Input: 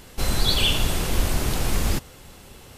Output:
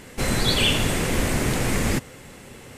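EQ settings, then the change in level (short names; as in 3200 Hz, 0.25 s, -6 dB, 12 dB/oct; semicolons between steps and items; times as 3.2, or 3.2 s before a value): graphic EQ 125/250/500/1000/2000/8000 Hz +8/+9/+8/+3/+12/+8 dB; -5.5 dB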